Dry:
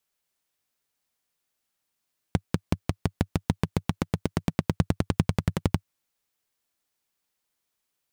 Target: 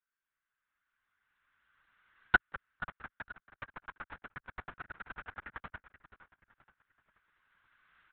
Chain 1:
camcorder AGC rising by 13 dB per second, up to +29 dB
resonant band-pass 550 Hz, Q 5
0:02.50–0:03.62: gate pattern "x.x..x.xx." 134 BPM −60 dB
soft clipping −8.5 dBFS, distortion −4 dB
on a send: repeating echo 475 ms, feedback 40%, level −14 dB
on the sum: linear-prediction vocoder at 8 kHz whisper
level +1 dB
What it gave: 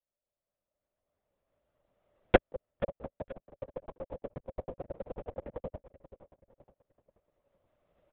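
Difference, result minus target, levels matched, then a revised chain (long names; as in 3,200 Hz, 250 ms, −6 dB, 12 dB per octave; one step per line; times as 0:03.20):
500 Hz band +17.0 dB
camcorder AGC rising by 13 dB per second, up to +29 dB
resonant band-pass 1,500 Hz, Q 5
0:02.50–0:03.62: gate pattern "x.x..x.xx." 134 BPM −60 dB
soft clipping −8.5 dBFS, distortion −6 dB
on a send: repeating echo 475 ms, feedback 40%, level −14 dB
on the sum: linear-prediction vocoder at 8 kHz whisper
level +1 dB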